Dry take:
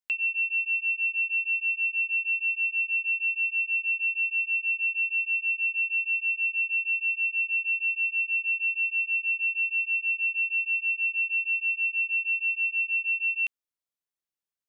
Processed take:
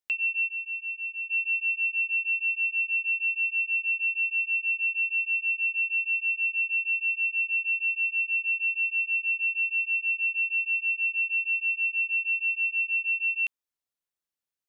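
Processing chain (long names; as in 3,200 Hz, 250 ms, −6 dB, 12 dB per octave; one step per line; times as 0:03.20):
0:00.47–0:01.29: parametric band 2,500 Hz → 2,600 Hz −7 dB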